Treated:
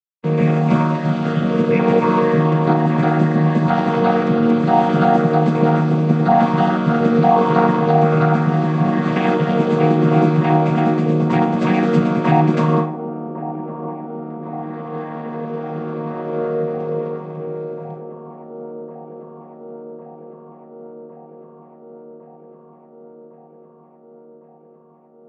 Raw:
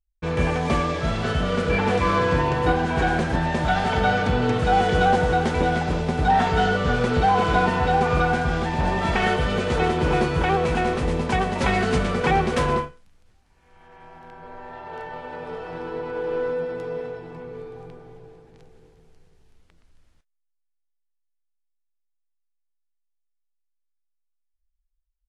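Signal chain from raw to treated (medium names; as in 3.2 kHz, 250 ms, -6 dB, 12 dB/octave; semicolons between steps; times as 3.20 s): vocoder on a held chord minor triad, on D#3; gate -44 dBFS, range -14 dB; feedback echo behind a band-pass 1106 ms, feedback 75%, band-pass 490 Hz, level -10.5 dB; on a send at -10.5 dB: reverberation RT60 0.60 s, pre-delay 5 ms; on the sum: trim +7 dB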